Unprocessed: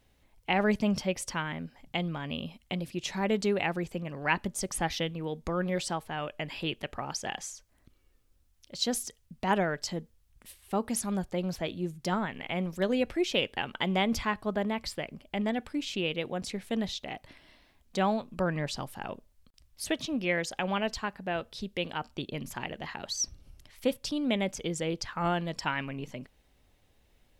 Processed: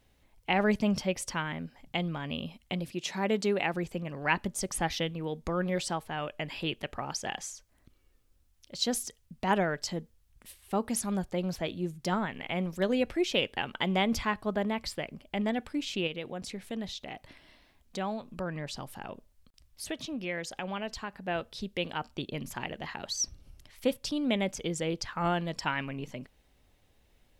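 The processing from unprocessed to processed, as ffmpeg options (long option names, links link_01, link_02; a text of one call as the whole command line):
ffmpeg -i in.wav -filter_complex "[0:a]asettb=1/sr,asplit=3[link_01][link_02][link_03];[link_01]atrim=end=2.934[link_04];[link_02]atrim=start=2.93:end=3.74,asetpts=PTS-STARTPTS,afade=type=in:duration=0.004:curve=qsin,afade=type=out:start_time=0.806:duration=0.004:curve=qsin,highpass=160[link_05];[link_03]atrim=start=3.736[link_06];[link_04][link_05]acrossfade=duration=0.004:curve1=hsin:curve2=qsin[link_07];[link_07][link_06]acrossfade=duration=0.004:curve1=qsin:curve2=hsin,asettb=1/sr,asplit=3[link_08][link_09][link_10];[link_08]atrim=end=16.074[link_11];[link_09]atrim=start=16.07:end=21.28,asetpts=PTS-STARTPTS,afade=type=in:duration=0.004:curve=qsin,afade=type=out:start_time=5.206:duration=0.004:curve=qsin,acompressor=threshold=-41dB:ratio=1.5:attack=3.2:release=140:knee=1:detection=peak[link_12];[link_10]atrim=start=21.276[link_13];[link_11][link_12]acrossfade=duration=0.004:curve1=hsin:curve2=qsin[link_14];[link_14][link_13]acrossfade=duration=0.004:curve1=qsin:curve2=hsin" out.wav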